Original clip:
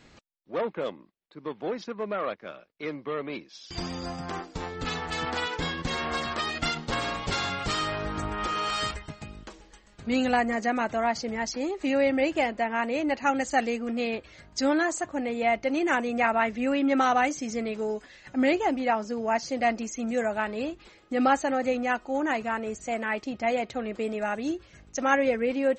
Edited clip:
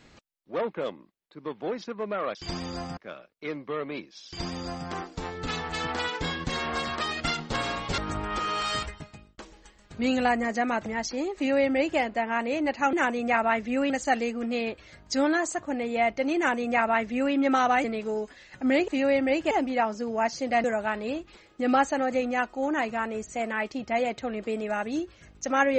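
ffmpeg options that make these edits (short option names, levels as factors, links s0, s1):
-filter_complex "[0:a]asplit=12[s0][s1][s2][s3][s4][s5][s6][s7][s8][s9][s10][s11];[s0]atrim=end=2.352[s12];[s1]atrim=start=3.638:end=4.262[s13];[s2]atrim=start=2.348:end=7.362[s14];[s3]atrim=start=8.058:end=9.46,asetpts=PTS-STARTPTS,afade=t=out:st=0.942:d=0.46[s15];[s4]atrim=start=9.46:end=10.942,asetpts=PTS-STARTPTS,afade=t=in:d=0.004:c=hsin[s16];[s5]atrim=start=11.288:end=13.362[s17];[s6]atrim=start=15.828:end=16.802[s18];[s7]atrim=start=13.358:end=17.302[s19];[s8]atrim=start=17.568:end=18.612[s20];[s9]atrim=start=11.788:end=12.422[s21];[s10]atrim=start=18.608:end=19.742[s22];[s11]atrim=start=20.158[s23];[s12][s13]acrossfade=d=0.004:c1=hsin:c2=hsin[s24];[s24][s14]acrossfade=d=0.004:c1=hsin:c2=hsin[s25];[s15][s16]concat=n=2:v=0:a=1[s26];[s25][s26]acrossfade=d=0.004:c1=hsin:c2=hsin[s27];[s27][s17]acrossfade=d=0.004:c1=hsin:c2=hsin[s28];[s28][s18]acrossfade=d=0.004:c1=hsin:c2=hsin[s29];[s29][s19]acrossfade=d=0.004:c1=hsin:c2=hsin[s30];[s30][s20]acrossfade=d=0.004:c1=hsin:c2=hsin[s31];[s31][s21]acrossfade=d=0.004:c1=hsin:c2=hsin[s32];[s32][s22]acrossfade=d=0.004:c1=hsin:c2=hsin[s33];[s33][s23]acrossfade=d=0.004:c1=hsin:c2=hsin"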